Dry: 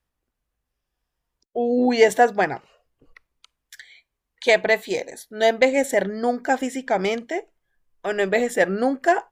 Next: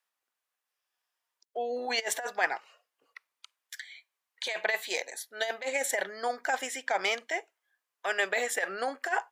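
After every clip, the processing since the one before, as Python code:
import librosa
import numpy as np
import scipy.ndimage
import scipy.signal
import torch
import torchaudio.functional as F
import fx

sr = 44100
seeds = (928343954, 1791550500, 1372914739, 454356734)

y = fx.over_compress(x, sr, threshold_db=-19.0, ratio=-0.5)
y = scipy.signal.sosfilt(scipy.signal.butter(2, 910.0, 'highpass', fs=sr, output='sos'), y)
y = y * 10.0 ** (-1.5 / 20.0)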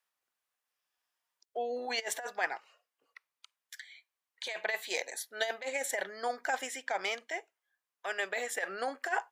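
y = fx.rider(x, sr, range_db=10, speed_s=0.5)
y = y * 10.0 ** (-3.5 / 20.0)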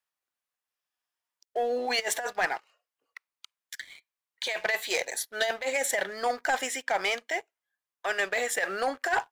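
y = fx.leveller(x, sr, passes=2)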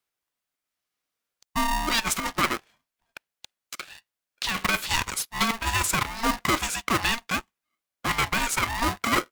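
y = x * np.sign(np.sin(2.0 * np.pi * 460.0 * np.arange(len(x)) / sr))
y = y * 10.0 ** (3.5 / 20.0)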